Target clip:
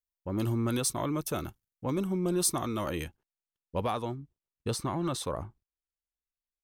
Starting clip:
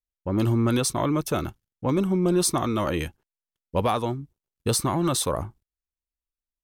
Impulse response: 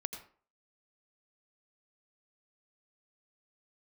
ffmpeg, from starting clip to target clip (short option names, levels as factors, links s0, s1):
-af "asetnsamples=n=441:p=0,asendcmd='3.04 highshelf g -2.5;4.15 highshelf g -10',highshelf=f=7800:g=8.5,volume=0.422"